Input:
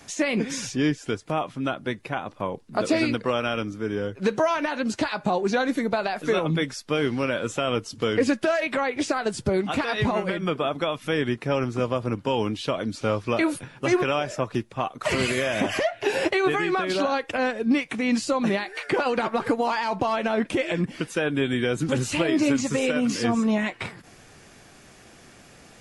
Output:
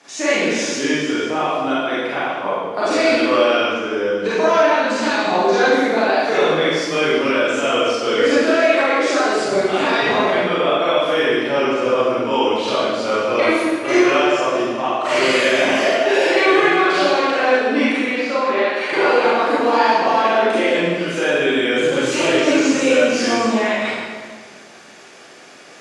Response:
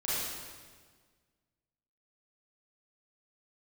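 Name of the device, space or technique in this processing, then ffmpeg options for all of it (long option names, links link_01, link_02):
supermarket ceiling speaker: -filter_complex "[0:a]asettb=1/sr,asplit=3[link_01][link_02][link_03];[link_01]atrim=end=18.014[link_04];[link_02]atrim=start=18.01:end=18.66,asetpts=PTS-STARTPTS,afade=type=in:duration=0.004:curve=qsin,afade=type=out:start_time=0.646:duration=0.004:curve=qsin,acrossover=split=310 3800:gain=0.0794 1 0.0891[link_05][link_06][link_07];[link_05][link_06][link_07]amix=inputs=3:normalize=0[link_08];[link_03]atrim=start=18.656[link_09];[link_04][link_08]acrossfade=duration=0.004:curve1=hsin:curve2=qsin[link_10];[link_10][link_09]acrossfade=duration=0.004:curve1=qsin:curve2=hsin,highpass=340,lowpass=6800[link_11];[1:a]atrim=start_sample=2205[link_12];[link_11][link_12]afir=irnorm=-1:irlink=0,volume=3dB"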